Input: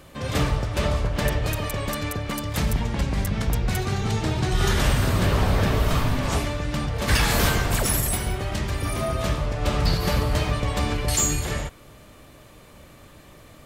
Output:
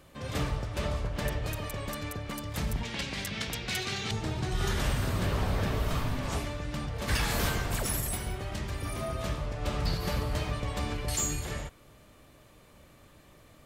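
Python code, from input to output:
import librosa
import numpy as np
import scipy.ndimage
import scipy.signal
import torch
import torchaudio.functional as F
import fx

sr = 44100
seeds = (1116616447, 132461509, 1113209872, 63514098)

y = fx.weighting(x, sr, curve='D', at=(2.83, 4.11))
y = y * 10.0 ** (-8.5 / 20.0)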